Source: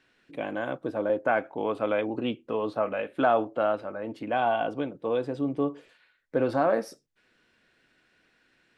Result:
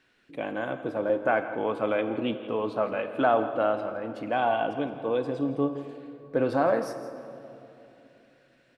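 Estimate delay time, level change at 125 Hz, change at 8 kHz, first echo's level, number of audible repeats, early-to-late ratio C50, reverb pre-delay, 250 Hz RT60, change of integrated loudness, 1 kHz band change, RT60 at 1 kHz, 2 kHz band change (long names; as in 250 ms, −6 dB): 165 ms, +1.0 dB, can't be measured, −15.0 dB, 1, 9.5 dB, 21 ms, 3.6 s, +0.5 dB, +0.5 dB, 2.7 s, +0.5 dB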